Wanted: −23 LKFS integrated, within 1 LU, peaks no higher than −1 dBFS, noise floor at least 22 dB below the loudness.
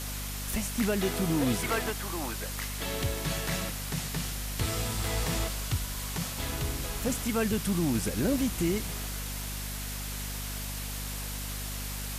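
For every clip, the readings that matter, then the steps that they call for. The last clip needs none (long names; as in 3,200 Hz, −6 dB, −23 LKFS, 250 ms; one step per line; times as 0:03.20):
mains hum 50 Hz; hum harmonics up to 250 Hz; level of the hum −35 dBFS; background noise floor −36 dBFS; target noise floor −54 dBFS; integrated loudness −31.5 LKFS; sample peak −16.0 dBFS; target loudness −23.0 LKFS
→ hum removal 50 Hz, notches 5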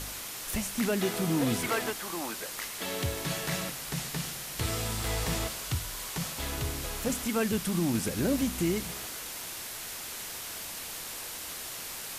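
mains hum none found; background noise floor −40 dBFS; target noise floor −54 dBFS
→ noise reduction from a noise print 14 dB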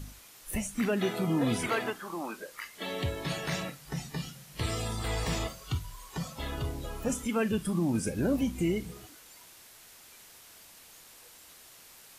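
background noise floor −54 dBFS; target noise floor −55 dBFS
→ noise reduction from a noise print 6 dB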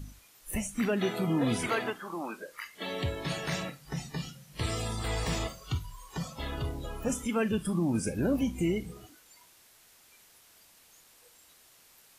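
background noise floor −60 dBFS; integrated loudness −33.0 LKFS; sample peak −17.5 dBFS; target loudness −23.0 LKFS
→ level +10 dB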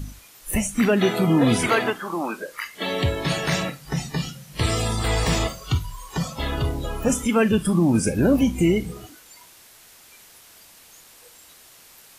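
integrated loudness −23.0 LKFS; sample peak −7.5 dBFS; background noise floor −50 dBFS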